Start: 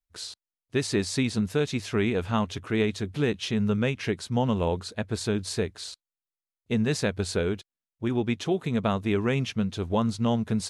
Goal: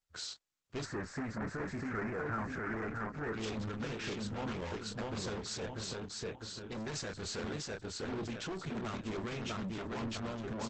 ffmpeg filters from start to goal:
-filter_complex "[0:a]equalizer=f=1.4k:w=3.7:g=8.5,aecho=1:1:649|1298|1947|2596:0.596|0.173|0.0501|0.0145,asoftclip=type=hard:threshold=-22dB,asplit=2[a][b];[b]adelay=27,volume=-7.5dB[c];[a][c]amix=inputs=2:normalize=0,asoftclip=type=tanh:threshold=-31.5dB,asplit=3[d][e][f];[d]afade=t=out:st=0.84:d=0.02[g];[e]highshelf=f=2.4k:t=q:w=3:g=-12,afade=t=in:st=0.84:d=0.02,afade=t=out:st=3.33:d=0.02[h];[f]afade=t=in:st=3.33:d=0.02[i];[g][h][i]amix=inputs=3:normalize=0,volume=-3.5dB" -ar 48000 -c:a libopus -b:a 10k

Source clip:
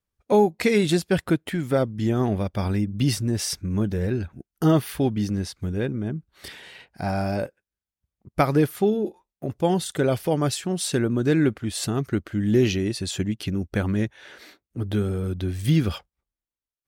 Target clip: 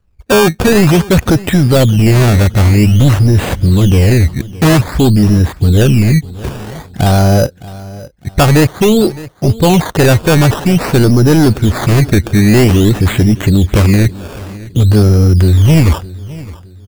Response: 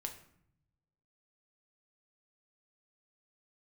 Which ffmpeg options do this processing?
-filter_complex "[0:a]aemphasis=mode=reproduction:type=bsi,acontrast=49,apsyclip=15dB,acrusher=samples=15:mix=1:aa=0.000001:lfo=1:lforange=15:lforate=0.51,asplit=2[a][b];[b]aecho=0:1:613|1226|1839:0.112|0.0381|0.013[c];[a][c]amix=inputs=2:normalize=0,volume=-4dB"

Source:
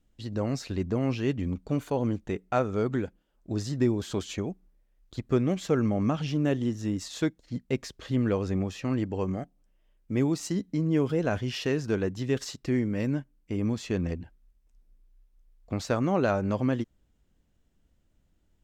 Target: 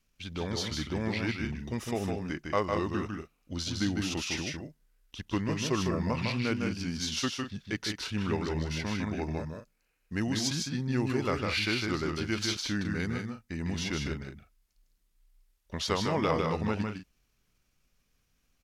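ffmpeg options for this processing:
-af "asetrate=36028,aresample=44100,atempo=1.22405,tiltshelf=f=930:g=-7,aecho=1:1:154.5|192.4:0.631|0.282"

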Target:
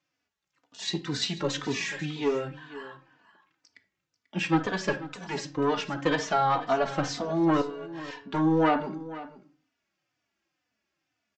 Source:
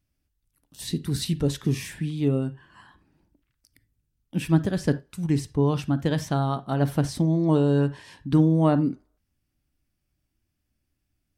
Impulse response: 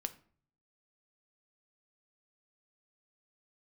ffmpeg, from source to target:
-filter_complex "[0:a]highpass=190,asoftclip=type=tanh:threshold=-18dB,asettb=1/sr,asplit=3[a][b][c];[a]atrim=end=7.614[d];[b]atrim=start=7.61:end=8.34,asetpts=PTS-STARTPTS,afade=t=in:d=0.004:c=qsin,afade=t=out:st=0.726:d=0.004:c=qsin,acompressor=threshold=-37dB:ratio=12[e];[c]atrim=start=8.336[f];[d][e]acrossfade=d=0.004:c1=hsin:c2=qsin[g];[g][f]acrossfade=d=0.004:c1=qsin:c2=hsin,acrossover=split=500 2800:gain=0.224 1 0.224[h][i][j];[h][i][j]amix=inputs=3:normalize=0,aecho=1:1:490:0.158,aresample=16000,aresample=44100,asplit=2[k][l];[l]highshelf=f=4.1k:g=12[m];[1:a]atrim=start_sample=2205,afade=t=out:st=0.37:d=0.01,atrim=end_sample=16758[n];[m][n]afir=irnorm=-1:irlink=0,volume=9.5dB[o];[k][o]amix=inputs=2:normalize=0,asplit=2[p][q];[q]adelay=3.3,afreqshift=-2[r];[p][r]amix=inputs=2:normalize=1"

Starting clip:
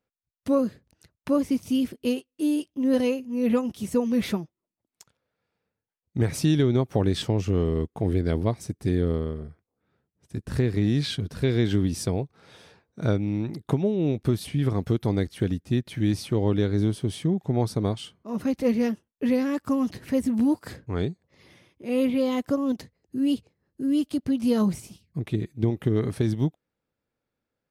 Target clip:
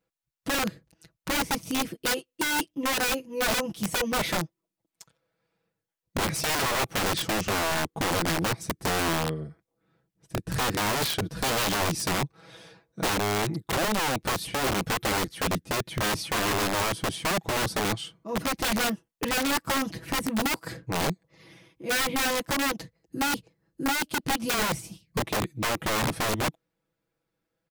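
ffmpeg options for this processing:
-af "aecho=1:1:6.1:0.85,aeval=exprs='(mod(11.2*val(0)+1,2)-1)/11.2':c=same"

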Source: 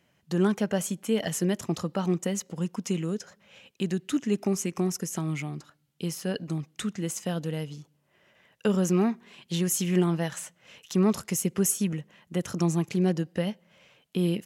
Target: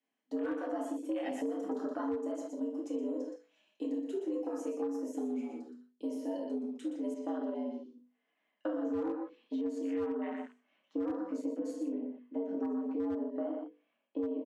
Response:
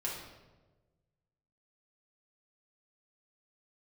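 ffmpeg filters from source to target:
-filter_complex "[1:a]atrim=start_sample=2205,atrim=end_sample=3528[a];[0:a][a]afir=irnorm=-1:irlink=0,afwtdn=0.02,bandreject=f=50:t=h:w=6,bandreject=f=100:t=h:w=6,bandreject=f=150:t=h:w=6,bandreject=f=200:t=h:w=6,bandreject=f=250:t=h:w=6,bandreject=f=300:t=h:w=6,bandreject=f=350:t=h:w=6,bandreject=f=400:t=h:w=6,aecho=1:1:120:0.422,asoftclip=type=tanh:threshold=-12dB,highpass=f=41:w=0.5412,highpass=f=41:w=1.3066,afreqshift=97,asetnsamples=n=441:p=0,asendcmd='7.14 lowpass f 4100;9.61 lowpass f 2100',lowpass=11k,volume=15.5dB,asoftclip=hard,volume=-15.5dB,acompressor=threshold=-28dB:ratio=6,volume=-4dB"

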